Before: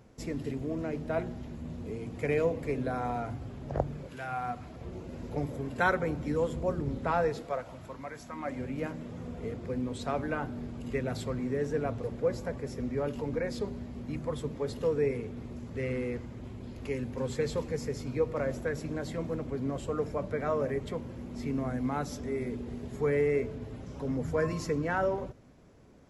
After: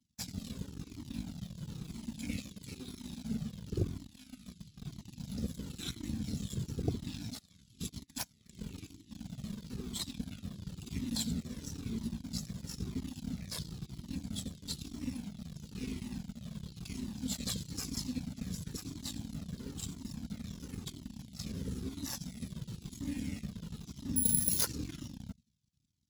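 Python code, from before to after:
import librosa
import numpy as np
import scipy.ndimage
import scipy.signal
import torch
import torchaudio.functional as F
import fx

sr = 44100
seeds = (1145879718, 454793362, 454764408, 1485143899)

p1 = x + fx.echo_feedback(x, sr, ms=89, feedback_pct=30, wet_db=-16, dry=0)
p2 = fx.over_compress(p1, sr, threshold_db=-46.0, ratio=-1.0, at=(7.79, 8.22), fade=0.02)
p3 = fx.dynamic_eq(p2, sr, hz=2000.0, q=1.1, threshold_db=-51.0, ratio=4.0, max_db=-5)
p4 = scipy.signal.sosfilt(scipy.signal.cheby1(3, 1.0, [120.0, 3600.0], 'bandstop', fs=sr, output='sos'), p3)
p5 = fx.cheby_harmonics(p4, sr, harmonics=(3, 6), levels_db=(-10, -9), full_scale_db=-25.5)
p6 = fx.low_shelf(p5, sr, hz=230.0, db=-9.0, at=(2.37, 3.25))
p7 = fx.resample_bad(p6, sr, factor=4, down='none', up='zero_stuff', at=(24.16, 24.65))
p8 = fx.quant_dither(p7, sr, seeds[0], bits=8, dither='none')
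p9 = p7 + (p8 * librosa.db_to_amplitude(-10.5))
p10 = scipy.signal.sosfilt(scipy.signal.butter(2, 89.0, 'highpass', fs=sr, output='sos'), p9)
p11 = fx.comb_cascade(p10, sr, direction='falling', hz=1.0)
y = p11 * librosa.db_to_amplitude(8.5)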